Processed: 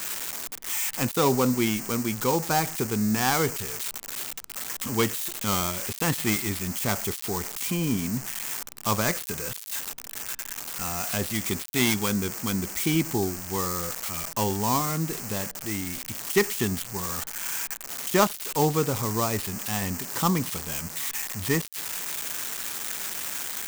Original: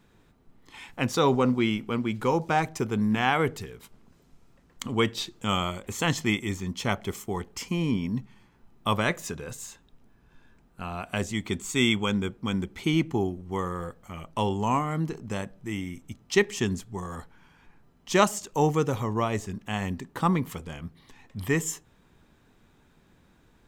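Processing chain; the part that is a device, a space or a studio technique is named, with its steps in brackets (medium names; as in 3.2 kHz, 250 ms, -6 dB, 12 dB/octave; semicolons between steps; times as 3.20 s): budget class-D amplifier (dead-time distortion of 0.13 ms; zero-crossing glitches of -14 dBFS)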